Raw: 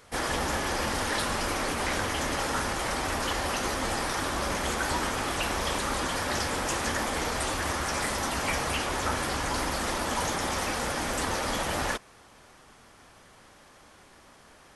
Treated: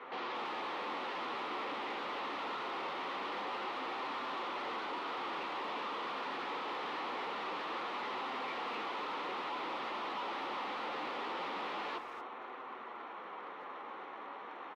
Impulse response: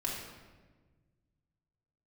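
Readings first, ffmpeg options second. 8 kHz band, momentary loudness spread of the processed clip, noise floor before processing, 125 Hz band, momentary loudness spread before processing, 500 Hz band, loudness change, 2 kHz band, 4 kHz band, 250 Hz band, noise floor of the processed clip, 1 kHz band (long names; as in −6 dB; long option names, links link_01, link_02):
below −30 dB, 7 LU, −55 dBFS, −27.5 dB, 1 LU, −10.0 dB, −11.0 dB, −11.0 dB, −11.5 dB, −13.0 dB, −47 dBFS, −6.5 dB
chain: -filter_complex "[0:a]acrossover=split=320|820|1700[link_01][link_02][link_03][link_04];[link_03]crystalizer=i=9:c=0[link_05];[link_04]acrusher=samples=18:mix=1:aa=0.000001[link_06];[link_01][link_02][link_05][link_06]amix=inputs=4:normalize=0,asplit=2[link_07][link_08];[link_08]highpass=frequency=720:poles=1,volume=29dB,asoftclip=type=tanh:threshold=-14.5dB[link_09];[link_07][link_09]amix=inputs=2:normalize=0,lowpass=frequency=1800:poles=1,volume=-6dB,flanger=delay=7.7:depth=6.7:regen=-22:speed=0.24:shape=sinusoidal,asoftclip=type=hard:threshold=-30.5dB,highpass=frequency=220:width=0.5412,highpass=frequency=220:width=1.3066,equalizer=frequency=240:width_type=q:width=4:gain=-3,equalizer=frequency=630:width_type=q:width=4:gain=-7,equalizer=frequency=1600:width_type=q:width=4:gain=-10,lowpass=frequency=3800:width=0.5412,lowpass=frequency=3800:width=1.3066,asplit=2[link_10][link_11];[link_11]adelay=230,highpass=300,lowpass=3400,asoftclip=type=hard:threshold=-33.5dB,volume=-8dB[link_12];[link_10][link_12]amix=inputs=2:normalize=0,volume=-5.5dB"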